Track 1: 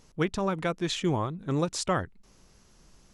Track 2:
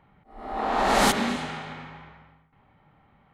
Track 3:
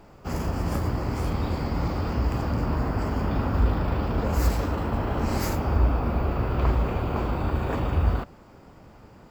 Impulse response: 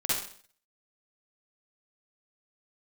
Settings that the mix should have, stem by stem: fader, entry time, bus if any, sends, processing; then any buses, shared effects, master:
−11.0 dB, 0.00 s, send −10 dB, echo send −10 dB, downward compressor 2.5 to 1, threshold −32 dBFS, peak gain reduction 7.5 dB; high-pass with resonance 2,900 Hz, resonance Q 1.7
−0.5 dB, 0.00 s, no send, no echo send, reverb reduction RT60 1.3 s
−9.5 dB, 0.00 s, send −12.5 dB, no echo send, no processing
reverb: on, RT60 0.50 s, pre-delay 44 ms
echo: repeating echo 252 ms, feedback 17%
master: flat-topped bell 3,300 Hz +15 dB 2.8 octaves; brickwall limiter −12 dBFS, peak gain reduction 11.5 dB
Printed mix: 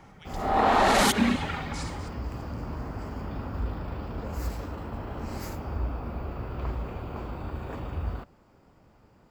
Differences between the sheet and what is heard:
stem 2 −0.5 dB → +8.5 dB
stem 3: send off
master: missing flat-topped bell 3,300 Hz +15 dB 2.8 octaves

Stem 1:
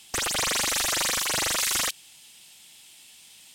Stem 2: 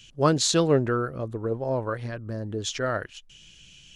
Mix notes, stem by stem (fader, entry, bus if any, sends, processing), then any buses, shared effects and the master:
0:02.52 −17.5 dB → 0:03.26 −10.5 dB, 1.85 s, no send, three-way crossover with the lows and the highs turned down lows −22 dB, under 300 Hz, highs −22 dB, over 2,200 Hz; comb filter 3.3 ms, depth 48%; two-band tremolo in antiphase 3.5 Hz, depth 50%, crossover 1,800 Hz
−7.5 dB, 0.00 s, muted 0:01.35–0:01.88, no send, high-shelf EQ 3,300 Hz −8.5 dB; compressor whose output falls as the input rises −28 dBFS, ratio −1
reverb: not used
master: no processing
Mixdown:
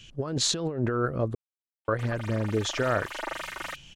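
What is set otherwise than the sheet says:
stem 1 −17.5 dB → −7.5 dB
stem 2 −7.5 dB → +1.5 dB

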